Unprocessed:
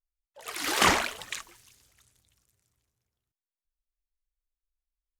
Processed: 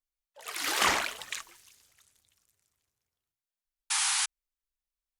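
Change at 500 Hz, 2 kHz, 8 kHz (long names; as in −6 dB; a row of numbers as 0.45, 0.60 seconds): −5.5, −1.5, +4.5 decibels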